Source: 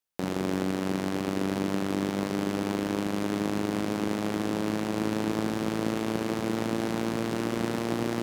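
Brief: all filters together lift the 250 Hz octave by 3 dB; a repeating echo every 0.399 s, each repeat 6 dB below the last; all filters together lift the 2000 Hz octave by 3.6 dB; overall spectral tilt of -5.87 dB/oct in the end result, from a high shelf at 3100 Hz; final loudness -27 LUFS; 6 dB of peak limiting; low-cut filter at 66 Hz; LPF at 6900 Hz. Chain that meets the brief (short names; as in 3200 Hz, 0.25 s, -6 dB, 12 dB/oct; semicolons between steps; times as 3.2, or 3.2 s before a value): HPF 66 Hz; LPF 6900 Hz; bell 250 Hz +4 dB; bell 2000 Hz +7 dB; high shelf 3100 Hz -7.5 dB; limiter -18.5 dBFS; feedback echo 0.399 s, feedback 50%, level -6 dB; gain +1.5 dB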